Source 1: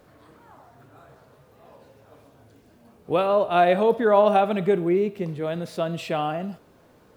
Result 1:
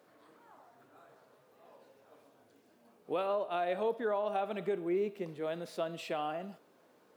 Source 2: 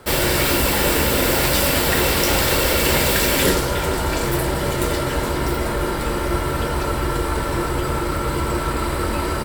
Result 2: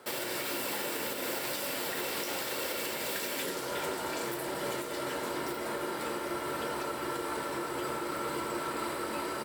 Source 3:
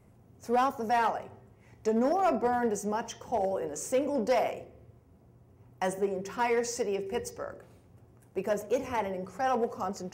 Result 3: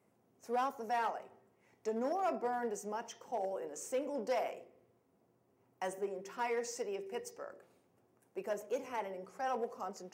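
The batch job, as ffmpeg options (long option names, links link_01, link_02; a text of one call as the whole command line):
ffmpeg -i in.wav -af "highpass=260,alimiter=limit=-16.5dB:level=0:latency=1:release=386,volume=-8dB" out.wav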